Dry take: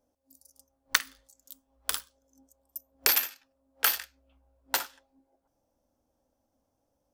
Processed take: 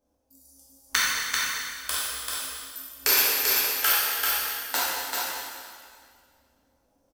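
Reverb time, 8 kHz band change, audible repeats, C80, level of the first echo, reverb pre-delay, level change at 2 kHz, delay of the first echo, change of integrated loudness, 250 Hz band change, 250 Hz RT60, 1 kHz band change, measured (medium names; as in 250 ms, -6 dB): 2.0 s, +7.5 dB, 1, -3.5 dB, -3.5 dB, 4 ms, +7.0 dB, 390 ms, +4.5 dB, +8.0 dB, 1.9 s, +7.5 dB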